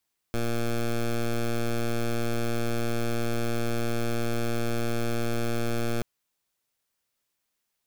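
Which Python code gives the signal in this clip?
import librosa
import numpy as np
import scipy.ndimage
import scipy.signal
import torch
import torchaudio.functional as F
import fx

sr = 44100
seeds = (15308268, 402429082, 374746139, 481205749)

y = fx.pulse(sr, length_s=5.68, hz=117.0, level_db=-26.0, duty_pct=12)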